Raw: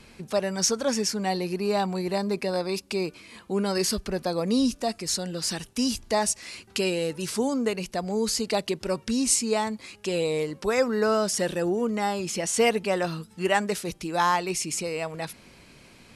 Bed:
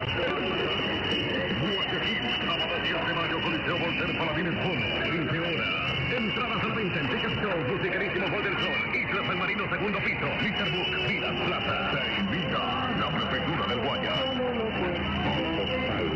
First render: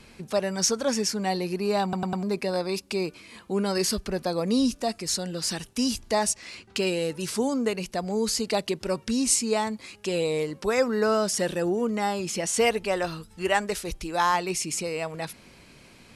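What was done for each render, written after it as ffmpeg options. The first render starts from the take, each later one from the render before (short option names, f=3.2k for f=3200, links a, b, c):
-filter_complex "[0:a]asettb=1/sr,asplit=3[a][b][c];[a]atrim=end=6.344[d];[b]atrim=start=6.34:end=6.87,asetpts=PTS-STARTPTS,afade=t=in:d=0.004:c=qsin,afade=t=out:st=0.526:d=0.004:c=qsin,adynamicsmooth=sensitivity=3.5:basefreq=7.2k[e];[c]atrim=start=6.866[f];[d][e]acrossfade=d=0.004:c1=hsin:c2=qsin[g];[g][f]acrossfade=d=0.004:c1=qsin:c2=hsin,asplit=3[h][i][j];[h]afade=t=out:st=12.59:d=0.02[k];[i]asubboost=boost=8.5:cutoff=56,afade=t=in:st=12.59:d=0.02,afade=t=out:st=14.33:d=0.02[l];[j]afade=t=in:st=14.33:d=0.02[m];[k][l][m]amix=inputs=3:normalize=0,asplit=5[n][o][p][q][r];[n]atrim=end=1.932[s];[o]atrim=start=1.828:end=1.932[t];[p]atrim=start=1.828:end=1.932[u];[q]atrim=start=1.828:end=1.932[v];[r]atrim=start=2.228[w];[s][t]acrossfade=d=0.004:c1=hsin:c2=hsin[x];[x][u]acrossfade=d=0.004:c1=hsin:c2=hsin[y];[y][v]acrossfade=d=0.004:c1=hsin:c2=hsin[z];[z][w]acrossfade=d=0.004:c1=hsin:c2=hsin"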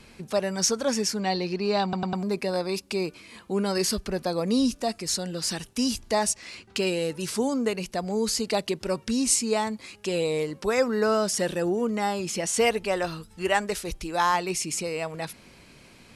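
-filter_complex "[0:a]asettb=1/sr,asplit=3[a][b][c];[a]atrim=end=1.204[d];[b]atrim=start=1.2:end=2.15,asetpts=PTS-STARTPTS,afade=t=in:d=0.004:c=qsin,afade=t=out:st=0.946:d=0.004:c=qsin,lowpass=f=4.7k:t=q:w=1.5[e];[c]atrim=start=2.146[f];[d][e]acrossfade=d=0.004:c1=hsin:c2=qsin[g];[g][f]acrossfade=d=0.004:c1=qsin:c2=hsin"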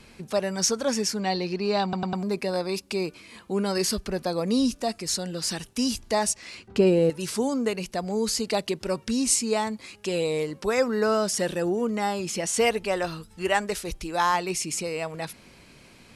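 -filter_complex "[0:a]asettb=1/sr,asplit=3[a][b][c];[a]atrim=end=6.684[d];[b]atrim=start=6.68:end=7.1,asetpts=PTS-STARTPTS,afade=t=in:d=0.004:c=qsin,afade=t=out:st=0.416:d=0.004:c=qsin,tiltshelf=f=1.3k:g=9.5[e];[c]atrim=start=7.096[f];[d][e]acrossfade=d=0.004:c1=hsin:c2=qsin[g];[g][f]acrossfade=d=0.004:c1=qsin:c2=hsin"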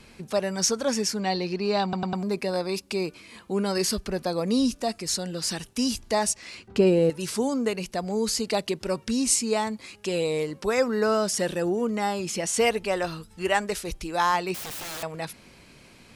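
-filter_complex "[0:a]asettb=1/sr,asplit=3[a][b][c];[a]atrim=end=14.544[d];[b]atrim=start=14.54:end=15.03,asetpts=PTS-STARTPTS,afade=t=in:d=0.004:c=qsin,afade=t=out:st=0.486:d=0.004:c=qsin,aeval=exprs='(mod(35.5*val(0)+1,2)-1)/35.5':c=same[e];[c]atrim=start=15.026[f];[d][e]acrossfade=d=0.004:c1=hsin:c2=qsin[g];[g][f]acrossfade=d=0.004:c1=qsin:c2=hsin"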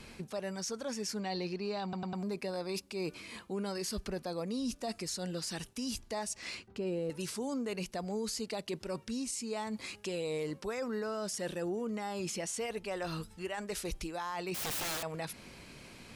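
-af "areverse,acompressor=threshold=-30dB:ratio=16,areverse,alimiter=level_in=4dB:limit=-24dB:level=0:latency=1:release=152,volume=-4dB"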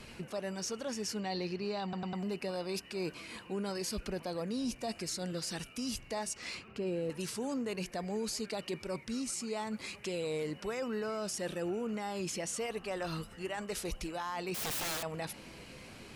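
-filter_complex "[1:a]volume=-28dB[a];[0:a][a]amix=inputs=2:normalize=0"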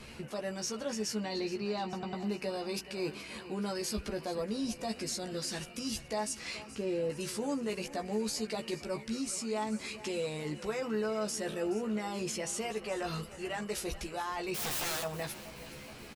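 -filter_complex "[0:a]asplit=2[a][b];[b]adelay=14,volume=-4dB[c];[a][c]amix=inputs=2:normalize=0,aecho=1:1:425|850|1275|1700|2125:0.15|0.0853|0.0486|0.0277|0.0158"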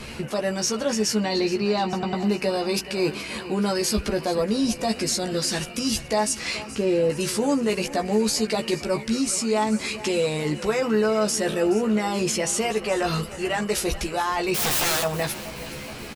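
-af "volume=12dB"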